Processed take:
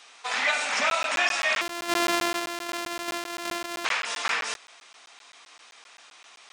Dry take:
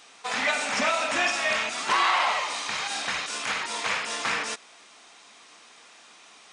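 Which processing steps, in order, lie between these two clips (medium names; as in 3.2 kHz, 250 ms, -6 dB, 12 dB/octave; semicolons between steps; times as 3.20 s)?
1.61–3.85 s: sorted samples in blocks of 128 samples; frequency weighting A; crackling interface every 0.13 s, samples 512, zero, from 0.90 s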